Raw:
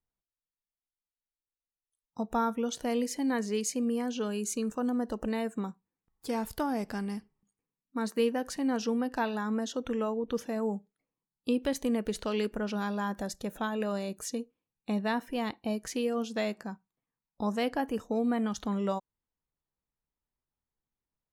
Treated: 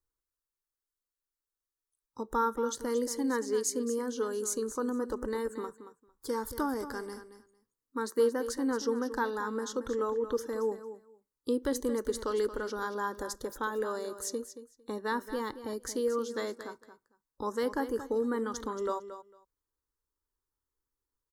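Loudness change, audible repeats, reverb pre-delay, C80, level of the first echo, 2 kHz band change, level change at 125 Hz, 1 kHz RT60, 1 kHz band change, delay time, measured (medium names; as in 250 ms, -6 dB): -1.0 dB, 2, no reverb, no reverb, -12.0 dB, -0.5 dB, no reading, no reverb, 0.0 dB, 226 ms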